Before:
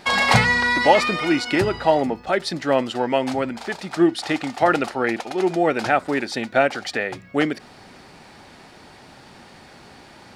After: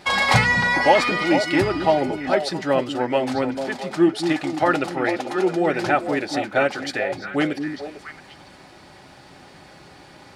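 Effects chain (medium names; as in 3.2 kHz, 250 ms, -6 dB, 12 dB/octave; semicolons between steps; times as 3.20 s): comb of notches 230 Hz; repeats whose band climbs or falls 224 ms, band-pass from 220 Hz, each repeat 1.4 oct, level -2.5 dB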